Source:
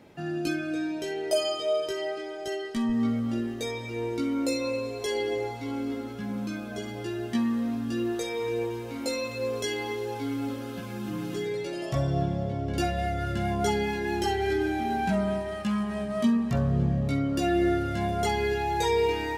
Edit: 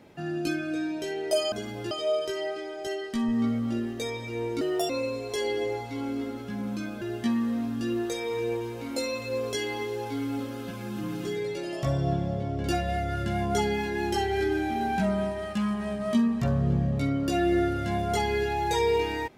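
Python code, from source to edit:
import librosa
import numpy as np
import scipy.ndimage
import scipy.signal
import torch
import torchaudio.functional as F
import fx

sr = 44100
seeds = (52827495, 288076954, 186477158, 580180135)

y = fx.edit(x, sr, fx.speed_span(start_s=4.22, length_s=0.38, speed=1.33),
    fx.move(start_s=6.72, length_s=0.39, to_s=1.52), tone=tone)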